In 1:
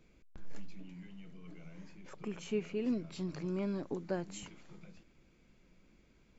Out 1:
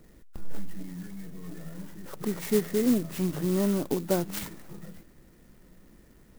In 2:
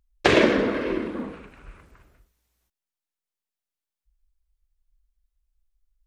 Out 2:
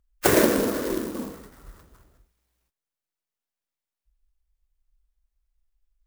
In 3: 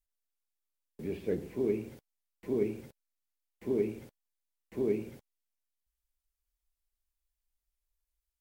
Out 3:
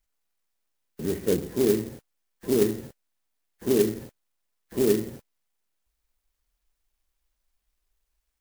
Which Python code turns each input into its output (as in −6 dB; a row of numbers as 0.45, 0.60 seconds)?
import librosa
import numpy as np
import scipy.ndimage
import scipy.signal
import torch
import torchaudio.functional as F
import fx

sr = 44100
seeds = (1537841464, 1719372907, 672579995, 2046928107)

y = fx.freq_compress(x, sr, knee_hz=1200.0, ratio=1.5)
y = fx.dynamic_eq(y, sr, hz=3500.0, q=2.3, threshold_db=-58.0, ratio=4.0, max_db=6)
y = fx.clock_jitter(y, sr, seeds[0], jitter_ms=0.083)
y = y * 10.0 ** (-30 / 20.0) / np.sqrt(np.mean(np.square(y)))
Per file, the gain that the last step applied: +10.5, −1.0, +8.5 decibels